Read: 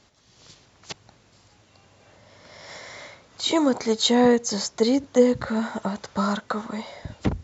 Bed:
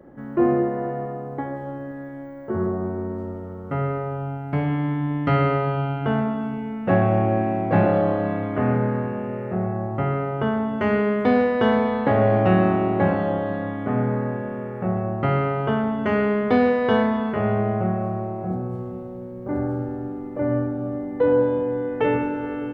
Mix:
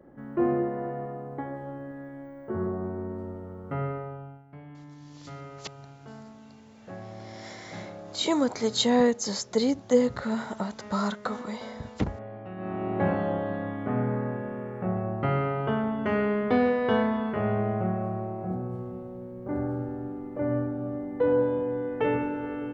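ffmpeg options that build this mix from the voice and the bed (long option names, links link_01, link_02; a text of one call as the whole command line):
ffmpeg -i stem1.wav -i stem2.wav -filter_complex "[0:a]adelay=4750,volume=-4dB[link_01];[1:a]volume=12dB,afade=type=out:start_time=3.83:duration=0.62:silence=0.141254,afade=type=in:start_time=12.56:duration=0.53:silence=0.125893[link_02];[link_01][link_02]amix=inputs=2:normalize=0" out.wav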